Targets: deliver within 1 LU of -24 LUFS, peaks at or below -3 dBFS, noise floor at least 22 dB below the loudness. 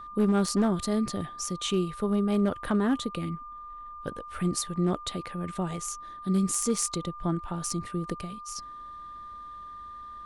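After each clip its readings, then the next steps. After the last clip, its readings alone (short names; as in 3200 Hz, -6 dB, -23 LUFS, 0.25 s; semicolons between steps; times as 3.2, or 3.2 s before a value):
clipped 0.3%; flat tops at -17.5 dBFS; steady tone 1200 Hz; tone level -40 dBFS; loudness -29.5 LUFS; peak -17.5 dBFS; loudness target -24.0 LUFS
-> clip repair -17.5 dBFS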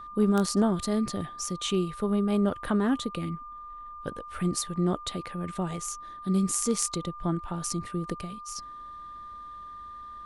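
clipped 0.0%; steady tone 1200 Hz; tone level -40 dBFS
-> notch 1200 Hz, Q 30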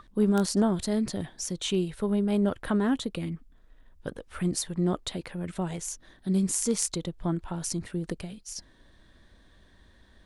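steady tone none; loudness -29.0 LUFS; peak -8.5 dBFS; loudness target -24.0 LUFS
-> gain +5 dB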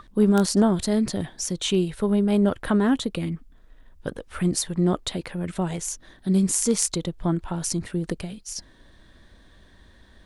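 loudness -24.0 LUFS; peak -3.5 dBFS; noise floor -53 dBFS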